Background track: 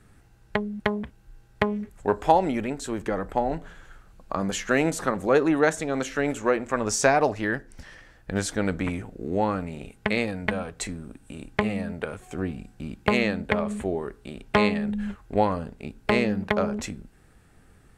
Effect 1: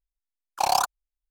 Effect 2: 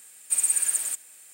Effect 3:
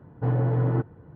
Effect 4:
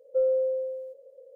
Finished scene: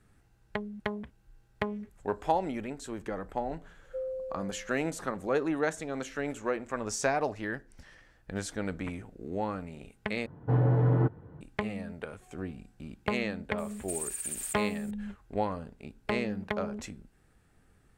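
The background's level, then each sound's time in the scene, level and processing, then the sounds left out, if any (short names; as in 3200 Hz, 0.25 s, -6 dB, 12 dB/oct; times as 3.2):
background track -8.5 dB
3.79 add 4 -12 dB
10.26 replace with 3 -1 dB
13.58 add 2 -7 dB + limiter -19 dBFS
not used: 1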